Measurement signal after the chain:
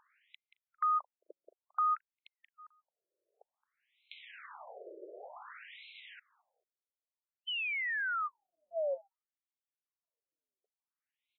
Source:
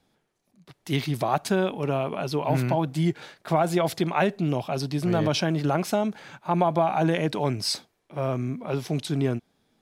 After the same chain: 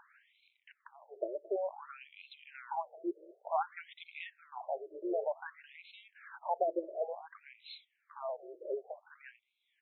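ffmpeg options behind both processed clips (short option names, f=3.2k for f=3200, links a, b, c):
-filter_complex "[0:a]highshelf=f=2.1k:g=-8.5,acompressor=mode=upward:threshold=-27dB:ratio=2.5,highpass=230,lowpass=7.8k,asplit=2[a][b];[b]adelay=220,lowpass=f=900:p=1,volume=-19dB,asplit=2[c][d];[d]adelay=220,lowpass=f=900:p=1,volume=0.25[e];[a][c][e]amix=inputs=3:normalize=0,afftfilt=real='re*between(b*sr/1024,440*pow(3000/440,0.5+0.5*sin(2*PI*0.55*pts/sr))/1.41,440*pow(3000/440,0.5+0.5*sin(2*PI*0.55*pts/sr))*1.41)':imag='im*between(b*sr/1024,440*pow(3000/440,0.5+0.5*sin(2*PI*0.55*pts/sr))/1.41,440*pow(3000/440,0.5+0.5*sin(2*PI*0.55*pts/sr))*1.41)':win_size=1024:overlap=0.75,volume=-5.5dB"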